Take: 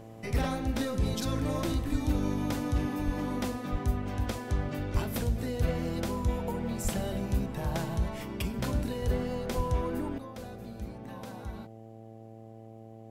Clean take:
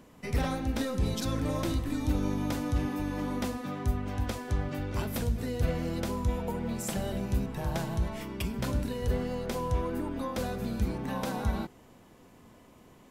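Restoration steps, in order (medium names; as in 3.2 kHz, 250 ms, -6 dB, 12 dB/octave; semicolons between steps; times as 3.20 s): de-hum 111.8 Hz, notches 7; de-plosive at 1.91/3.05/3.71/4.93/6.83/9.56 s; trim 0 dB, from 10.18 s +10.5 dB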